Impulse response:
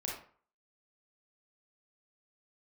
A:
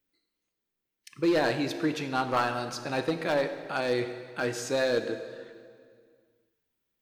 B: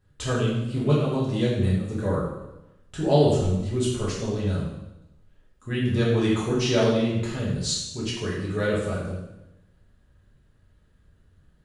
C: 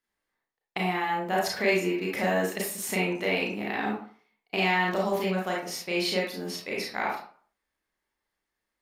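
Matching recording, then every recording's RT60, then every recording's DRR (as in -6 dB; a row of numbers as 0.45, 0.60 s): C; 2.1, 0.95, 0.45 s; 9.0, -7.5, -3.0 dB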